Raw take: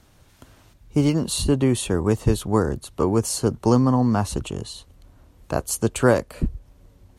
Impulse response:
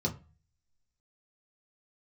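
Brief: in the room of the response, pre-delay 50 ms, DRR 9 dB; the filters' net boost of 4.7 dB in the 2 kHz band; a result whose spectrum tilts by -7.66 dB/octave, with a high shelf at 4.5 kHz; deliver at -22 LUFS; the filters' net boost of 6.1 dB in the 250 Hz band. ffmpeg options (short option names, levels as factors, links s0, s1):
-filter_complex "[0:a]equalizer=f=250:t=o:g=7,equalizer=f=2000:t=o:g=6,highshelf=f=4500:g=3,asplit=2[s0][s1];[1:a]atrim=start_sample=2205,adelay=50[s2];[s1][s2]afir=irnorm=-1:irlink=0,volume=0.2[s3];[s0][s3]amix=inputs=2:normalize=0,volume=0.447"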